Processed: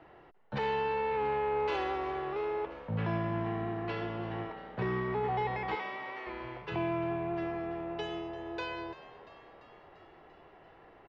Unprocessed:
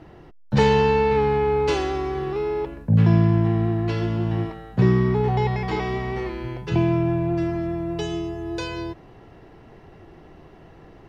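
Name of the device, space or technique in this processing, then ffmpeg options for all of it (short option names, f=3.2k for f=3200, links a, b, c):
DJ mixer with the lows and highs turned down: -filter_complex "[0:a]asplit=3[a][b][c];[a]afade=t=out:st=5.74:d=0.02[d];[b]highpass=f=1.3k:p=1,afade=t=in:st=5.74:d=0.02,afade=t=out:st=6.26:d=0.02[e];[c]afade=t=in:st=6.26:d=0.02[f];[d][e][f]amix=inputs=3:normalize=0,acrossover=split=450 3500:gain=0.2 1 0.0794[g][h][i];[g][h][i]amix=inputs=3:normalize=0,alimiter=limit=-20.5dB:level=0:latency=1:release=11,asplit=7[j][k][l][m][n][o][p];[k]adelay=343,afreqshift=75,volume=-16.5dB[q];[l]adelay=686,afreqshift=150,volume=-20.5dB[r];[m]adelay=1029,afreqshift=225,volume=-24.5dB[s];[n]adelay=1372,afreqshift=300,volume=-28.5dB[t];[o]adelay=1715,afreqshift=375,volume=-32.6dB[u];[p]adelay=2058,afreqshift=450,volume=-36.6dB[v];[j][q][r][s][t][u][v]amix=inputs=7:normalize=0,volume=-4dB"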